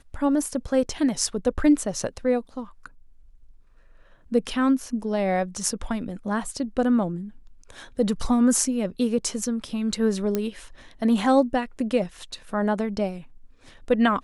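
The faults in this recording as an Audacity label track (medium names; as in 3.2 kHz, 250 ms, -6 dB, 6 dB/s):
10.350000	10.350000	pop -11 dBFS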